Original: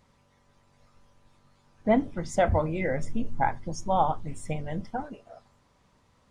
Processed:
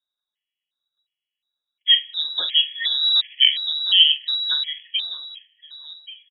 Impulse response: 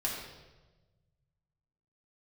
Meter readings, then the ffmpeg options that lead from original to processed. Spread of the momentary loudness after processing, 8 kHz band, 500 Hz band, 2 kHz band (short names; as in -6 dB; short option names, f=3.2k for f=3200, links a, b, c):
16 LU, under -35 dB, under -25 dB, +7.0 dB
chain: -filter_complex "[0:a]bandreject=f=60:t=h:w=6,bandreject=f=120:t=h:w=6,agate=range=-29dB:threshold=-51dB:ratio=16:detection=peak,equalizer=f=950:w=1.5:g=3.5,acrusher=bits=5:mode=log:mix=0:aa=0.000001,asplit=2[a][b];[b]adelay=44,volume=-13.5dB[c];[a][c]amix=inputs=2:normalize=0,aecho=1:1:1131:0.168,asplit=2[d][e];[1:a]atrim=start_sample=2205,asetrate=39690,aresample=44100[f];[e][f]afir=irnorm=-1:irlink=0,volume=-26.5dB[g];[d][g]amix=inputs=2:normalize=0,lowpass=f=3.3k:t=q:w=0.5098,lowpass=f=3.3k:t=q:w=0.6013,lowpass=f=3.3k:t=q:w=0.9,lowpass=f=3.3k:t=q:w=2.563,afreqshift=-3900,afftfilt=real='re*gt(sin(2*PI*1.4*pts/sr)*(1-2*mod(floor(b*sr/1024/1700),2)),0)':imag='im*gt(sin(2*PI*1.4*pts/sr)*(1-2*mod(floor(b*sr/1024/1700),2)),0)':win_size=1024:overlap=0.75,volume=7dB"